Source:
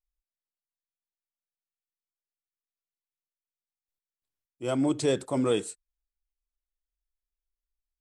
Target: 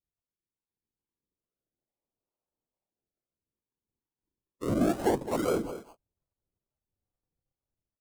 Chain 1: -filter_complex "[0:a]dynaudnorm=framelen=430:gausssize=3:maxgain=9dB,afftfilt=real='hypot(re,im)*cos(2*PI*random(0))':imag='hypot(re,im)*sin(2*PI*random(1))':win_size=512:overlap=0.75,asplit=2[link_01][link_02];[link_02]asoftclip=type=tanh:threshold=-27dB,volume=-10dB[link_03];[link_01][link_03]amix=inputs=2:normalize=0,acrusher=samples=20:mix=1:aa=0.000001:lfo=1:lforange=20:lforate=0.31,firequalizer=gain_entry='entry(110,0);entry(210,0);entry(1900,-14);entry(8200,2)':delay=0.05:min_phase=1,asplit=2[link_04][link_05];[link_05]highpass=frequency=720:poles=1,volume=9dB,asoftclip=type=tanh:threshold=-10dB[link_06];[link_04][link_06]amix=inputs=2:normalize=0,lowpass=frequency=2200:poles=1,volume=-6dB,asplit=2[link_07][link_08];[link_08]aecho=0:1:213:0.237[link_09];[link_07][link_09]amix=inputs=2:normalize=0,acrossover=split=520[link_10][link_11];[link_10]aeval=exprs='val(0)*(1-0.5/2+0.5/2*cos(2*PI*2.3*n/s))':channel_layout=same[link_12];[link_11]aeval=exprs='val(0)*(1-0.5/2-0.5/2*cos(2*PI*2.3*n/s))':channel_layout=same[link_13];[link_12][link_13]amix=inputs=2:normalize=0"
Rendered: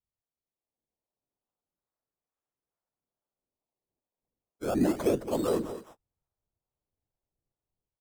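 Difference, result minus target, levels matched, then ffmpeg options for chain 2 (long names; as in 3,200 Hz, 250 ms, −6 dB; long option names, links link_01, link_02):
sample-and-hold swept by an LFO: distortion −9 dB
-filter_complex "[0:a]dynaudnorm=framelen=430:gausssize=3:maxgain=9dB,afftfilt=real='hypot(re,im)*cos(2*PI*random(0))':imag='hypot(re,im)*sin(2*PI*random(1))':win_size=512:overlap=0.75,asplit=2[link_01][link_02];[link_02]asoftclip=type=tanh:threshold=-27dB,volume=-10dB[link_03];[link_01][link_03]amix=inputs=2:normalize=0,acrusher=samples=47:mix=1:aa=0.000001:lfo=1:lforange=47:lforate=0.31,firequalizer=gain_entry='entry(110,0);entry(210,0);entry(1900,-14);entry(8200,2)':delay=0.05:min_phase=1,asplit=2[link_04][link_05];[link_05]highpass=frequency=720:poles=1,volume=9dB,asoftclip=type=tanh:threshold=-10dB[link_06];[link_04][link_06]amix=inputs=2:normalize=0,lowpass=frequency=2200:poles=1,volume=-6dB,asplit=2[link_07][link_08];[link_08]aecho=0:1:213:0.237[link_09];[link_07][link_09]amix=inputs=2:normalize=0,acrossover=split=520[link_10][link_11];[link_10]aeval=exprs='val(0)*(1-0.5/2+0.5/2*cos(2*PI*2.3*n/s))':channel_layout=same[link_12];[link_11]aeval=exprs='val(0)*(1-0.5/2-0.5/2*cos(2*PI*2.3*n/s))':channel_layout=same[link_13];[link_12][link_13]amix=inputs=2:normalize=0"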